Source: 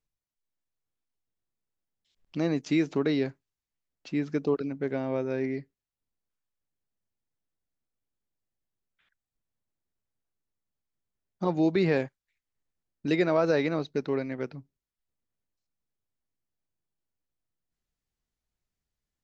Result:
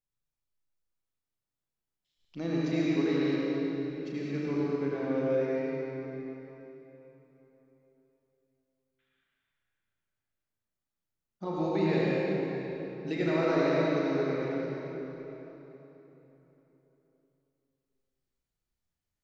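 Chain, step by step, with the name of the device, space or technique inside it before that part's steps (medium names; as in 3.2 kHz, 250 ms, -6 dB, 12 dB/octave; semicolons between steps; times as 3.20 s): 2.53–3.18 s: low-pass 6.4 kHz 24 dB/octave; tunnel (flutter echo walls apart 6.2 m, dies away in 0.3 s; reverberation RT60 3.7 s, pre-delay 73 ms, DRR -6.5 dB); trim -9 dB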